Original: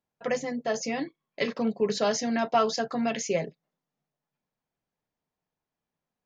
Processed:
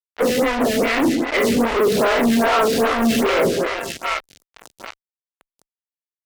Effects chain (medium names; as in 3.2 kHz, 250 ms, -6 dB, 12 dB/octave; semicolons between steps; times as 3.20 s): every event in the spectrogram widened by 120 ms; cabinet simulation 110–3300 Hz, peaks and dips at 160 Hz -5 dB, 260 Hz +6 dB, 380 Hz +4 dB, 760 Hz -6 dB, 2.1 kHz +3 dB; on a send: two-band feedback delay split 850 Hz, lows 137 ms, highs 754 ms, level -11 dB; on the sum: fuzz box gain 39 dB, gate -38 dBFS; lamp-driven phase shifter 2.5 Hz